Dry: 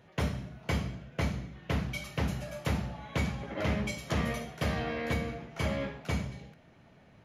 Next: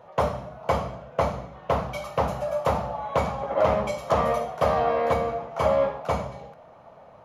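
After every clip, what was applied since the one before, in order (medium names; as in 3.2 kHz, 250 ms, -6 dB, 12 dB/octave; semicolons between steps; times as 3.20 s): high-order bell 780 Hz +16 dB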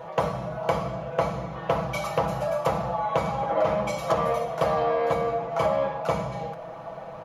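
comb 6.1 ms; compression 2.5:1, threshold -36 dBFS, peak gain reduction 14.5 dB; trim +9 dB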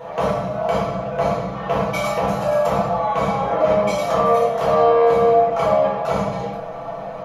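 peak limiter -17 dBFS, peak gain reduction 6.5 dB; reverberation, pre-delay 4 ms, DRR -4 dB; trim +2 dB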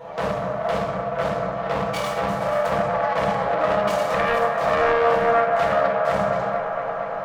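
self-modulated delay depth 0.35 ms; feedback echo behind a band-pass 233 ms, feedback 84%, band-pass 950 Hz, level -5.5 dB; trim -4 dB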